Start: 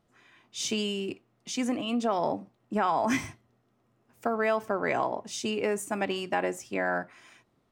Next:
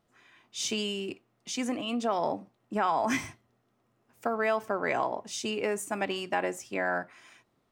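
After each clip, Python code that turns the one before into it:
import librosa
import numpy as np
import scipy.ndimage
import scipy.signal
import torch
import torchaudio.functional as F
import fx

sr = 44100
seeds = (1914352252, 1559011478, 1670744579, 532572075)

y = fx.low_shelf(x, sr, hz=390.0, db=-4.0)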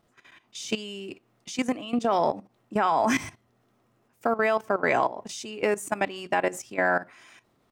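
y = fx.level_steps(x, sr, step_db=15)
y = F.gain(torch.from_numpy(y), 7.5).numpy()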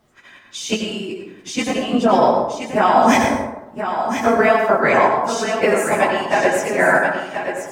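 y = fx.phase_scramble(x, sr, seeds[0], window_ms=50)
y = y + 10.0 ** (-8.0 / 20.0) * np.pad(y, (int(1028 * sr / 1000.0), 0))[:len(y)]
y = fx.rev_plate(y, sr, seeds[1], rt60_s=0.9, hf_ratio=0.45, predelay_ms=75, drr_db=3.0)
y = F.gain(torch.from_numpy(y), 8.0).numpy()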